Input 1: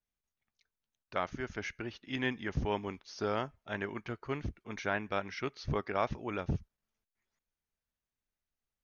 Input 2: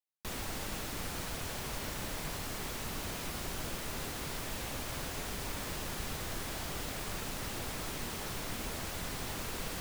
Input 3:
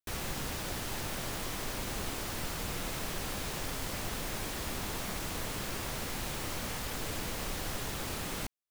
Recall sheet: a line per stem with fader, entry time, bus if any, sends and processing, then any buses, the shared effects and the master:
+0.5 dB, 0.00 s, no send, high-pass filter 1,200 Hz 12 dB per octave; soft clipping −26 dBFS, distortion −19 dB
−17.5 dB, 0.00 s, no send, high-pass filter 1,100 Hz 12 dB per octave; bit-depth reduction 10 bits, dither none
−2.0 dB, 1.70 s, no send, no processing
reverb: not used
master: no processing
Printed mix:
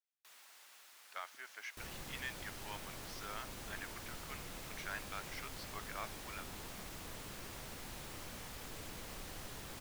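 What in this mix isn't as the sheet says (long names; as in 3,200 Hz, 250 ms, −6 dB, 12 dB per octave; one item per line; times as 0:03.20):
stem 1 +0.5 dB → −5.5 dB
stem 3 −2.0 dB → −11.5 dB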